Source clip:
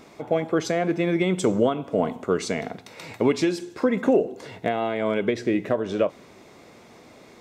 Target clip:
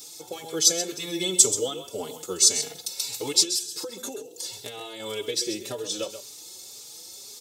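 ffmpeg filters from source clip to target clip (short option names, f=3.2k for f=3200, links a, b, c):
-filter_complex "[0:a]highpass=72,highshelf=f=5.4k:g=8,aecho=1:1:2.3:0.57,asettb=1/sr,asplit=3[a][b][c];[a]atrim=end=3.414[d];[b]atrim=start=3.41:end=5,asetpts=PTS-STARTPTS,afade=t=in:d=0.004:c=qsin,afade=t=out:st=1.586:d=0.004:c=qsin,acompressor=threshold=-24dB:ratio=10[e];[c]atrim=start=4.996[f];[d][e]acrossfade=d=0.004:c1=hsin:c2=qsin[g];[g][f]acrossfade=d=0.004:c1=qsin:c2=hsin,aexciter=amount=13.4:drive=4.5:freq=3.2k,asplit=2[h][i];[i]aecho=0:1:131:0.282[j];[h][j]amix=inputs=2:normalize=0,asplit=2[k][l];[l]adelay=4.4,afreqshift=1.9[m];[k][m]amix=inputs=2:normalize=1,volume=-8dB"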